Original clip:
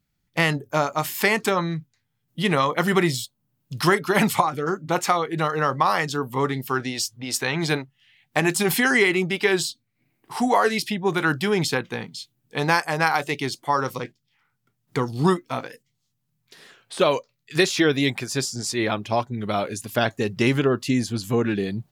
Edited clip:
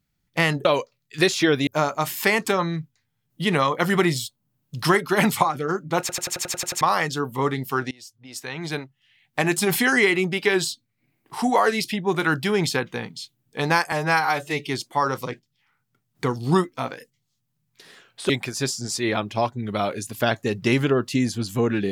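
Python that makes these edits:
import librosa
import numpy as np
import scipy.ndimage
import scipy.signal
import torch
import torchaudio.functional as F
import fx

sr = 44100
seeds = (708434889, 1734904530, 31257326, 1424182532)

y = fx.edit(x, sr, fx.stutter_over(start_s=4.98, slice_s=0.09, count=9),
    fx.fade_in_from(start_s=6.89, length_s=1.69, floor_db=-23.5),
    fx.stretch_span(start_s=12.9, length_s=0.51, factor=1.5),
    fx.move(start_s=17.02, length_s=1.02, to_s=0.65), tone=tone)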